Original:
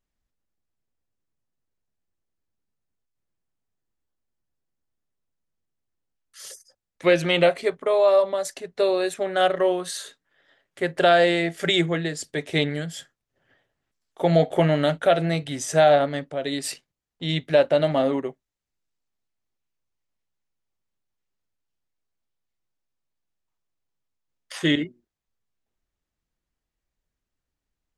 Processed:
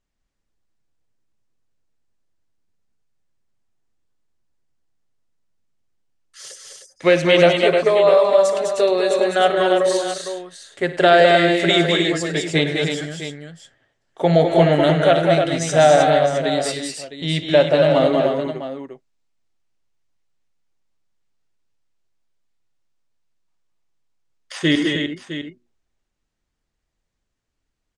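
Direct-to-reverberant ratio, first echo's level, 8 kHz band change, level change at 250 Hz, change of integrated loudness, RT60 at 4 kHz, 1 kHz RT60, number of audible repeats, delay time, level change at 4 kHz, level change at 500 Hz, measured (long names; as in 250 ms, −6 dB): no reverb audible, −15.5 dB, +5.0 dB, +5.5 dB, +5.5 dB, no reverb audible, no reverb audible, 5, 58 ms, +6.0 dB, +6.0 dB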